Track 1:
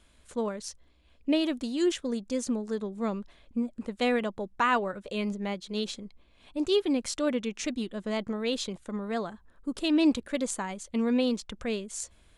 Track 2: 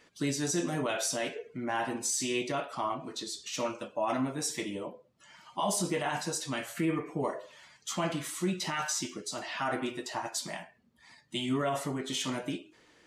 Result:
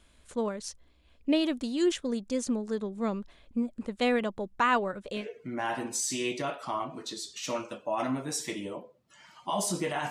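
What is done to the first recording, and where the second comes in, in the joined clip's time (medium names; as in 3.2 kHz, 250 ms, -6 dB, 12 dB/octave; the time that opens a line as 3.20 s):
track 1
5.20 s: go over to track 2 from 1.30 s, crossfade 0.14 s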